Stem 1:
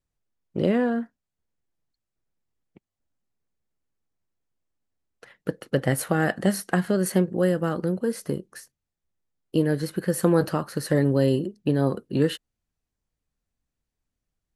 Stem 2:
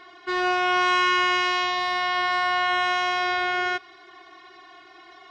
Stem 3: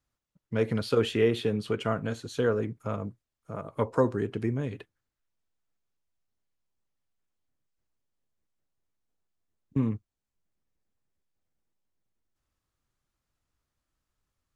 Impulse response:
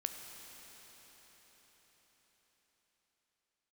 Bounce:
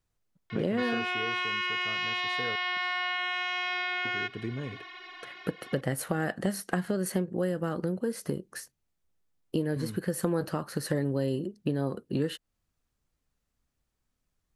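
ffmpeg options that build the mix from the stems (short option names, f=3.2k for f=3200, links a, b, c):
-filter_complex "[0:a]volume=2dB[a];[1:a]highpass=f=210:w=0.5412,highpass=f=210:w=1.3066,equalizer=f=2.5k:t=o:w=1.4:g=12.5,adelay=500,volume=-4.5dB[b];[2:a]volume=-4dB,asplit=3[c][d][e];[c]atrim=end=2.56,asetpts=PTS-STARTPTS,afade=t=out:st=2.556:d=0.004:c=hsin[f];[d]atrim=start=2.56:end=4.05,asetpts=PTS-STARTPTS,volume=0[g];[e]atrim=start=4.05,asetpts=PTS-STARTPTS,afade=t=in:d=0.004:c=hsin[h];[f][g][h]concat=n=3:v=0:a=1[i];[b][i]amix=inputs=2:normalize=0,acompressor=threshold=-19dB:ratio=6,volume=0dB[j];[a][j]amix=inputs=2:normalize=0,acompressor=threshold=-30dB:ratio=2.5"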